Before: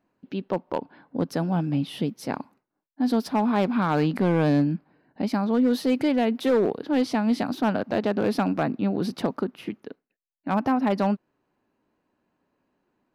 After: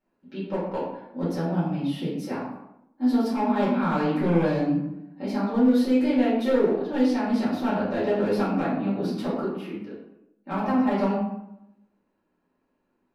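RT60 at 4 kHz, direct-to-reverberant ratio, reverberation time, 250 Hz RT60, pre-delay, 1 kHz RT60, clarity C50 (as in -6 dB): 0.50 s, -10.0 dB, 0.85 s, 1.0 s, 3 ms, 0.80 s, 2.0 dB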